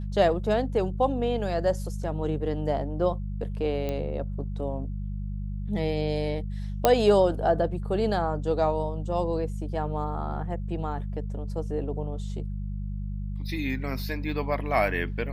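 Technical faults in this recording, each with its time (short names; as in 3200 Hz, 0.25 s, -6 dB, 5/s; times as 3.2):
hum 50 Hz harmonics 4 -32 dBFS
3.89 pop -18 dBFS
6.85 pop -5 dBFS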